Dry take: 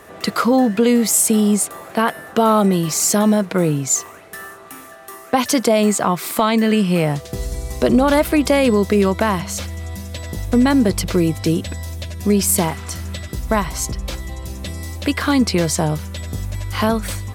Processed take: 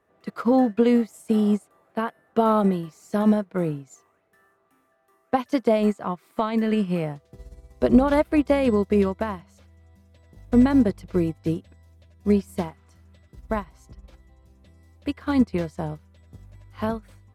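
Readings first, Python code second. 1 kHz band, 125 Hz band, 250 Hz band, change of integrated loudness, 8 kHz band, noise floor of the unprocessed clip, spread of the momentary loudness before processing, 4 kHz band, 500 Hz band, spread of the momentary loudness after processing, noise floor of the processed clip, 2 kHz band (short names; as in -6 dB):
-8.0 dB, -9.0 dB, -5.0 dB, -6.0 dB, under -30 dB, -39 dBFS, 15 LU, -16.5 dB, -5.5 dB, 14 LU, -65 dBFS, -11.5 dB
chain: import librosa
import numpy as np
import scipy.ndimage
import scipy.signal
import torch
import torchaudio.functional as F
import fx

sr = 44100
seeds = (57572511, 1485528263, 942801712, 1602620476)

y = fx.high_shelf(x, sr, hz=3000.0, db=-12.0)
y = fx.upward_expand(y, sr, threshold_db=-27.0, expansion=2.5)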